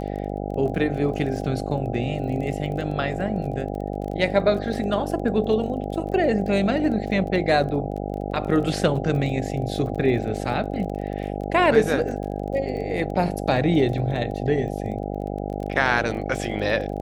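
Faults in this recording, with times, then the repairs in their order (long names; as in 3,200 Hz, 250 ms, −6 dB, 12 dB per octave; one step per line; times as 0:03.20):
mains buzz 50 Hz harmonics 16 −29 dBFS
surface crackle 21 per second −32 dBFS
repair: click removal
hum removal 50 Hz, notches 16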